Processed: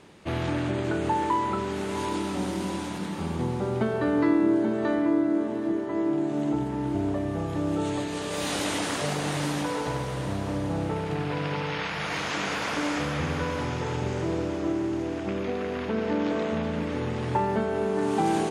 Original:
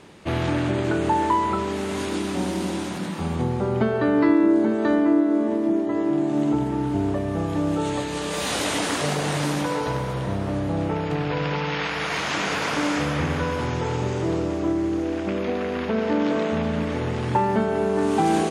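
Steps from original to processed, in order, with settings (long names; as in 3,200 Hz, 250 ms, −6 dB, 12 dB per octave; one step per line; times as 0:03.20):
feedback delay with all-pass diffusion 803 ms, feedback 41%, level −11 dB
level −4.5 dB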